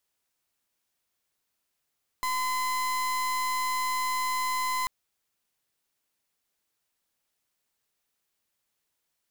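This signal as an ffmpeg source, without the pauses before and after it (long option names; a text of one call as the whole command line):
ffmpeg -f lavfi -i "aevalsrc='0.0376*(2*lt(mod(1020*t,1),0.36)-1)':duration=2.64:sample_rate=44100" out.wav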